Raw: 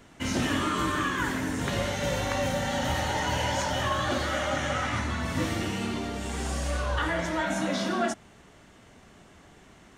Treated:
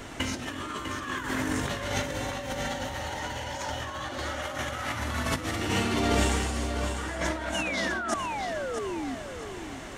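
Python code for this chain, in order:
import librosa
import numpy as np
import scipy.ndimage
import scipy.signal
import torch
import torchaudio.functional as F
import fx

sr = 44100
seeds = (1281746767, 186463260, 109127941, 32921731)

y = fx.delta_mod(x, sr, bps=64000, step_db=-36.0, at=(4.42, 5.56))
y = fx.peak_eq(y, sr, hz=180.0, db=-7.5, octaves=0.57)
y = fx.over_compress(y, sr, threshold_db=-35.0, ratio=-0.5)
y = fx.spec_paint(y, sr, seeds[0], shape='fall', start_s=7.54, length_s=1.61, low_hz=250.0, high_hz=3000.0, level_db=-39.0)
y = fx.echo_feedback(y, sr, ms=649, feedback_pct=30, wet_db=-8.5)
y = y * librosa.db_to_amplitude(5.5)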